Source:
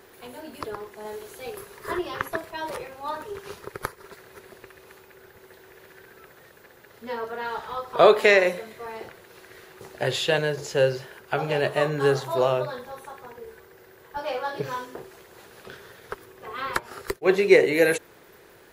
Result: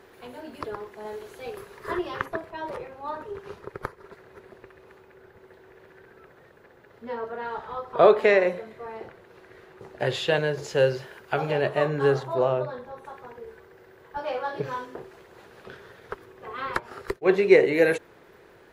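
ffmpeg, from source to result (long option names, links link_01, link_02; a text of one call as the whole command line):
ffmpeg -i in.wav -af "asetnsamples=nb_out_samples=441:pad=0,asendcmd='2.26 lowpass f 1300;10 lowpass f 3000;10.56 lowpass f 5100;11.51 lowpass f 2200;12.23 lowpass f 1100;13.05 lowpass f 2400',lowpass=frequency=3200:poles=1" out.wav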